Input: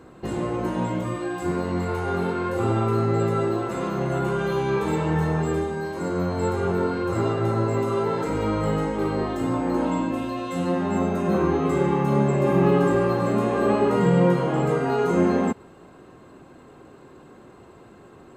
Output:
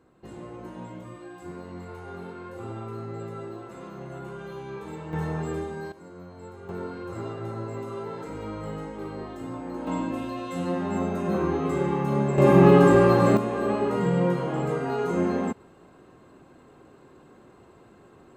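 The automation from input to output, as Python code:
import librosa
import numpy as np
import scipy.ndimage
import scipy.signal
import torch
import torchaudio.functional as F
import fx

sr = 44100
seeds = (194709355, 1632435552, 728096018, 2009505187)

y = fx.gain(x, sr, db=fx.steps((0.0, -14.0), (5.13, -6.5), (5.92, -19.0), (6.69, -11.0), (9.87, -4.0), (12.38, 4.0), (13.37, -5.0)))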